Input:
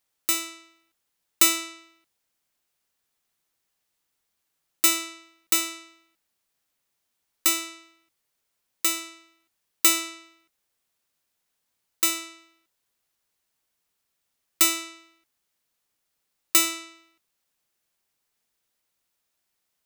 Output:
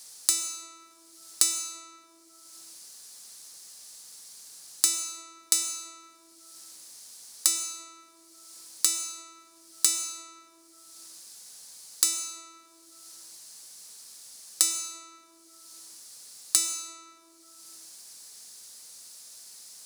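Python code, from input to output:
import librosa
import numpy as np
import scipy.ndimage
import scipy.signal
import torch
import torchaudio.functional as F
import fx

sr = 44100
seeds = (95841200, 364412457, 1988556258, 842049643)

y = fx.band_shelf(x, sr, hz=6700.0, db=15.0, octaves=1.7)
y = fx.rev_plate(y, sr, seeds[0], rt60_s=1.2, hf_ratio=0.35, predelay_ms=85, drr_db=8.5)
y = fx.band_squash(y, sr, depth_pct=100)
y = y * librosa.db_to_amplitude(-10.5)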